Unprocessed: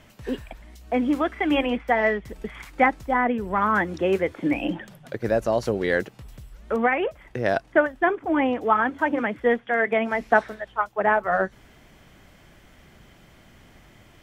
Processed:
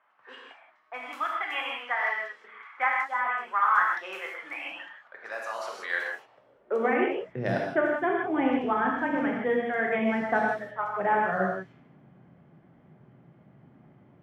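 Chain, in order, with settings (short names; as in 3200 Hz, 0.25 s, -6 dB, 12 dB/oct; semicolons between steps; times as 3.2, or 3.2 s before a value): low-pass opened by the level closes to 1000 Hz, open at -18.5 dBFS; non-linear reverb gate 0.2 s flat, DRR -1.5 dB; high-pass sweep 1200 Hz -> 150 Hz, 5.94–7.38; gain -8.5 dB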